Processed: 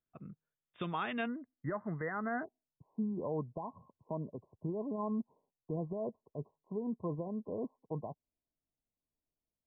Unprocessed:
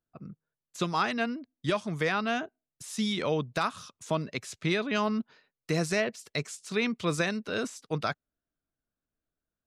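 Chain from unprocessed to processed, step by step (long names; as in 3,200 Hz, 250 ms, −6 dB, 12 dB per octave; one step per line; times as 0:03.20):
brickwall limiter −21 dBFS, peak gain reduction 6 dB
linear-phase brick-wall low-pass 3,700 Hz, from 0:01.26 2,100 Hz, from 0:02.43 1,100 Hz
level −5 dB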